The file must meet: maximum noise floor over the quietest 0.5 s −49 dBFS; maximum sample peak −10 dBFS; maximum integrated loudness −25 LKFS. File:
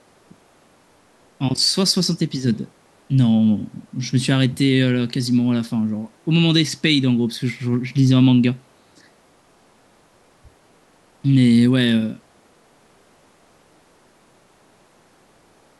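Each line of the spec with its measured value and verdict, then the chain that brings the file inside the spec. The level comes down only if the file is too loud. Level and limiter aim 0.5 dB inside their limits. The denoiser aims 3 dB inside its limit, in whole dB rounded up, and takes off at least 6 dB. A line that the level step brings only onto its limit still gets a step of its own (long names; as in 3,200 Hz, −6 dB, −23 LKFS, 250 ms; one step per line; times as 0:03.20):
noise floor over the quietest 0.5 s −55 dBFS: in spec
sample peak −4.0 dBFS: out of spec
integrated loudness −18.5 LKFS: out of spec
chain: level −7 dB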